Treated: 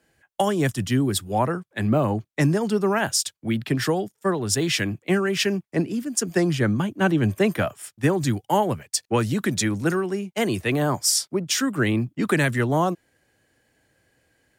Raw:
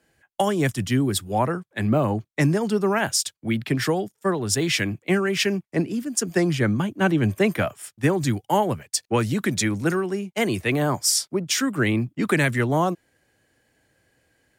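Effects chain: dynamic bell 2.2 kHz, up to -5 dB, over -44 dBFS, Q 6.5

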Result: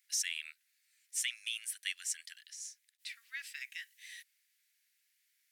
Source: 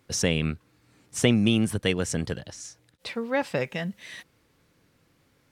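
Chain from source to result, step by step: steep high-pass 1.8 kHz 48 dB/octave; peaking EQ 2.9 kHz -11 dB 2.9 oct; trim +2.5 dB

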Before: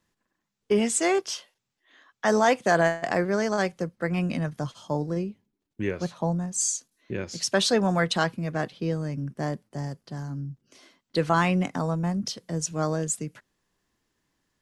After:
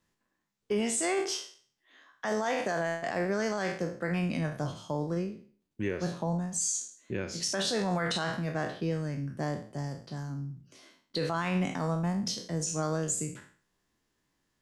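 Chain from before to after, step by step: spectral sustain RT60 0.46 s; peak limiter -17.5 dBFS, peak gain reduction 9.5 dB; trim -3.5 dB

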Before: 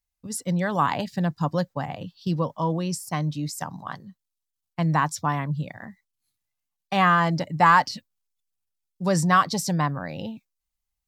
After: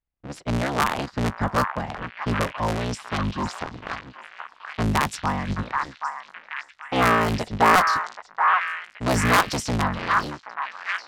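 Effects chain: cycle switcher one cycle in 3, inverted; repeats whose band climbs or falls 778 ms, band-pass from 1.3 kHz, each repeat 0.7 oct, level -0.5 dB; level-controlled noise filter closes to 2 kHz, open at -17.5 dBFS

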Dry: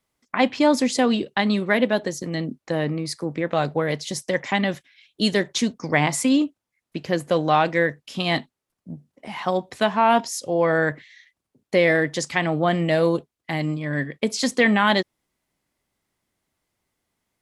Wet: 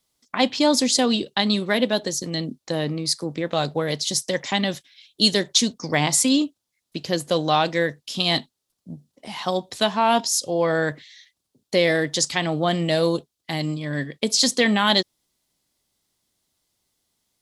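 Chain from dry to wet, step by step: resonant high shelf 2.9 kHz +8 dB, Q 1.5; trim -1 dB

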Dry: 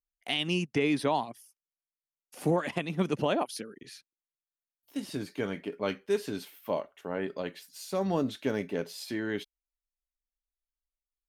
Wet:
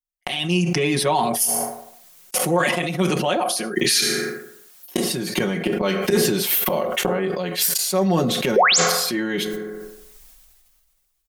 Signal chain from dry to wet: gate -51 dBFS, range -34 dB; treble shelf 6.8 kHz +8 dB; inverted gate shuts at -31 dBFS, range -27 dB; 2.43–5.04 s: bass shelf 270 Hz -8.5 dB; 8.56–8.78 s: painted sound rise 380–8100 Hz -33 dBFS; reverberation RT60 0.75 s, pre-delay 3 ms, DRR 12.5 dB; level rider gain up to 6 dB; comb 5.5 ms, depth 87%; loudness maximiser +34.5 dB; decay stretcher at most 27 dB/s; trim -8 dB

